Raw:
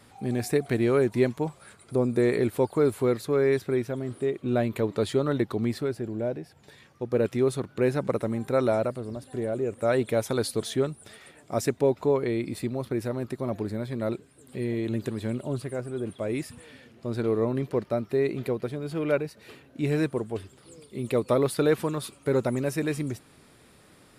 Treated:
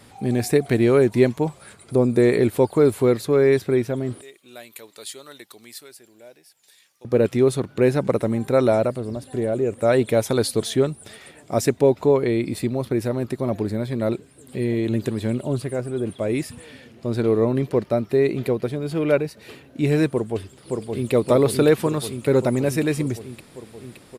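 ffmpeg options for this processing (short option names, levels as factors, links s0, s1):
-filter_complex "[0:a]asettb=1/sr,asplit=3[s0][s1][s2];[s0]atrim=end=4.214[s3];[s1]atrim=start=4.21:end=7.05,asetpts=PTS-STARTPTS,afade=t=in:d=0.004:c=qsin,afade=t=out:st=2.836:d=0.004:c=qsin,aderivative[s4];[s2]atrim=start=7.046[s5];[s3][s4]acrossfade=d=0.004:c1=hsin:c2=qsin[s6];[s6][s5]acrossfade=d=0.004:c1=qsin:c2=hsin,asplit=2[s7][s8];[s8]afade=t=in:st=20.1:d=0.01,afade=t=out:st=21.12:d=0.01,aecho=0:1:570|1140|1710|2280|2850|3420|3990|4560|5130|5700|6270|6840:0.668344|0.501258|0.375943|0.281958|0.211468|0.158601|0.118951|0.0892131|0.0669099|0.0501824|0.0376368|0.0282276[s9];[s7][s9]amix=inputs=2:normalize=0,equalizer=f=1300:w=1.6:g=-3,volume=2.11"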